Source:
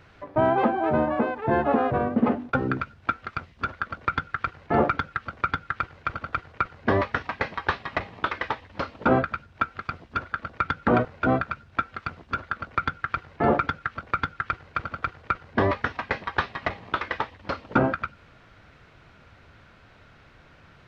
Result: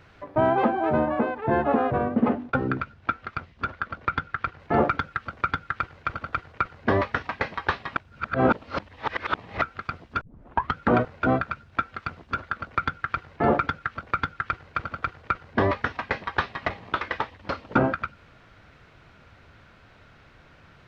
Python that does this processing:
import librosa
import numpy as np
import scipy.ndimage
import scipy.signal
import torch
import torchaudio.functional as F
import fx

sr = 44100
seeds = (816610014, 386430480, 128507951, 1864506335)

y = fx.air_absorb(x, sr, metres=67.0, at=(0.99, 4.6))
y = fx.edit(y, sr, fx.reverse_span(start_s=7.96, length_s=1.66),
    fx.tape_start(start_s=10.21, length_s=0.54), tone=tone)